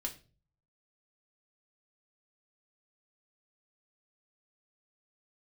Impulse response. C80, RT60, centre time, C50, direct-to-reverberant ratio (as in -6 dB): 19.0 dB, 0.35 s, 11 ms, 14.0 dB, 1.0 dB